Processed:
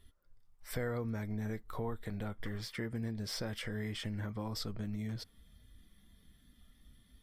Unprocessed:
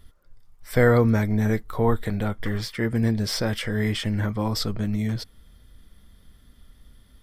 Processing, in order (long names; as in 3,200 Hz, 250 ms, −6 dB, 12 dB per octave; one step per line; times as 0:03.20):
noise reduction from a noise print of the clip's start 7 dB
downward compressor 3 to 1, threshold −32 dBFS, peak gain reduction 14 dB
level −6 dB